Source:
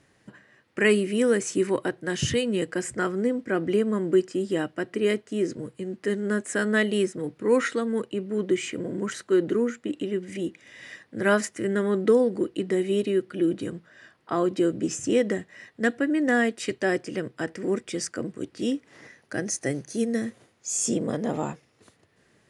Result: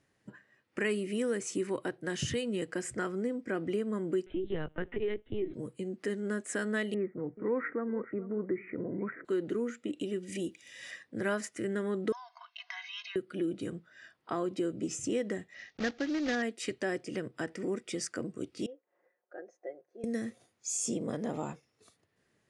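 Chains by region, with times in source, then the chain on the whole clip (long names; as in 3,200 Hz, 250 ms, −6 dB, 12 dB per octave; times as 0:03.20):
0:04.26–0:05.54: linear-prediction vocoder at 8 kHz pitch kept + multiband upward and downward compressor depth 40%
0:06.94–0:09.25: Butterworth low-pass 2,200 Hz 72 dB per octave + single-tap delay 431 ms −18.5 dB
0:10.00–0:10.91: high-shelf EQ 4,800 Hz +8 dB + notch filter 2,100 Hz, Q 10
0:12.12–0:13.16: linear-phase brick-wall band-pass 670–6,500 Hz + comb filter 1.9 ms, depth 96%
0:15.54–0:16.43: one scale factor per block 3 bits + Butterworth low-pass 6,300 Hz 48 dB per octave + notch filter 1,000 Hz, Q 8
0:18.66–0:20.04: four-pole ladder band-pass 680 Hz, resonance 35% + comb filter 5.6 ms, depth 55%
whole clip: noise reduction from a noise print of the clip's start 9 dB; downward compressor 2 to 1, threshold −32 dBFS; level −2.5 dB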